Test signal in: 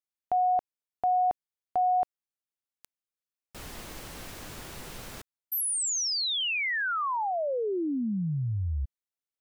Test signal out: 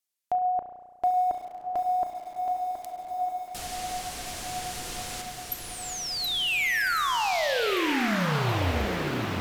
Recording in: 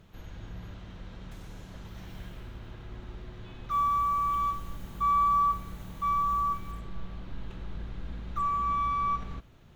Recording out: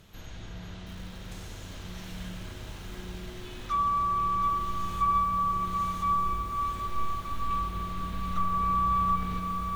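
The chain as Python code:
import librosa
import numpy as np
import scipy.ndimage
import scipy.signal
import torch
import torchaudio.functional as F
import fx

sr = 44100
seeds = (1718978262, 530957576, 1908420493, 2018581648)

p1 = fx.env_lowpass_down(x, sr, base_hz=1400.0, full_db=-24.5)
p2 = fx.high_shelf(p1, sr, hz=2900.0, db=12.0)
p3 = p2 + fx.echo_diffused(p2, sr, ms=1294, feedback_pct=48, wet_db=-5, dry=0)
p4 = fx.rev_spring(p3, sr, rt60_s=1.5, pass_ms=(33,), chirp_ms=40, drr_db=6.0)
y = fx.echo_crushed(p4, sr, ms=723, feedback_pct=35, bits=8, wet_db=-6.5)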